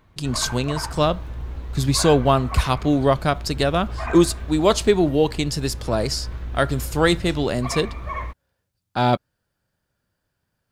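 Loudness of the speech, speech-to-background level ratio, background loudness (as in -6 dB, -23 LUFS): -21.0 LUFS, 12.0 dB, -33.0 LUFS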